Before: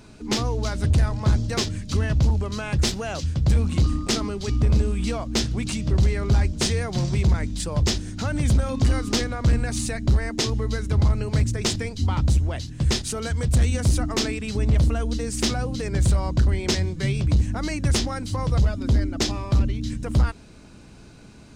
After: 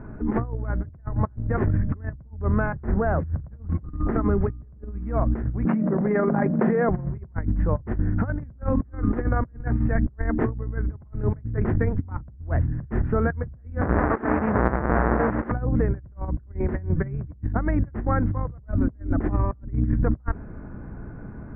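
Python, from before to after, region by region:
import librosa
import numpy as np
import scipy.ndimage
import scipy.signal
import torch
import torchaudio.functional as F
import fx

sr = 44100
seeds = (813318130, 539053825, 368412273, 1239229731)

y = fx.chain(x, sr, fx.lowpass(hz=1900.0, slope=12),
    fx.hum_notches(base_hz=60, count=8),
    fx.quant_float(bits=4), at=(2.66, 4.12))
y = fx.chain(y, sr, fx.cheby_ripple_highpass(hz=150.0, ripple_db=6),
    fx.hum_notches(base_hz=50, count=7),
    fx.env_flatten(amount_pct=100), at=(5.65, 6.89))
y = fx.chain(y, sr, fx.halfwave_hold(),
    fx.highpass(hz=530.0, slope=6),
    fx.over_compress(threshold_db=-28.0, ratio=-0.5), at=(13.81, 15.52))
y = scipy.signal.sosfilt(scipy.signal.butter(8, 1800.0, 'lowpass', fs=sr, output='sos'), y)
y = fx.low_shelf(y, sr, hz=140.0, db=6.5)
y = fx.over_compress(y, sr, threshold_db=-25.0, ratio=-0.5)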